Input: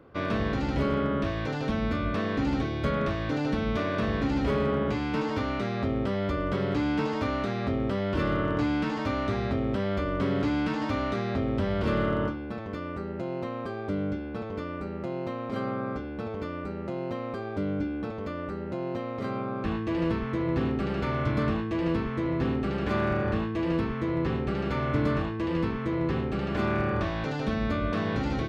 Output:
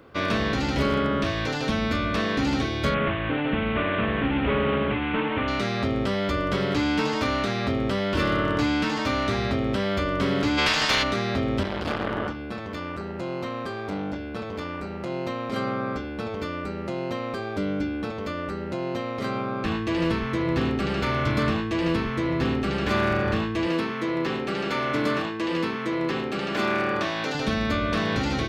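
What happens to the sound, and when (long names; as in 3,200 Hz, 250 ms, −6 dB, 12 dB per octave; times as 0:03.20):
0:02.94–0:05.48: variable-slope delta modulation 16 kbit/s
0:10.57–0:11.02: ceiling on every frequency bin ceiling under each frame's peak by 23 dB
0:11.63–0:15.10: saturating transformer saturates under 510 Hz
0:23.67–0:27.35: high-pass filter 210 Hz
whole clip: high-shelf EQ 2,100 Hz +11 dB; mains-hum notches 50/100/150 Hz; level +2.5 dB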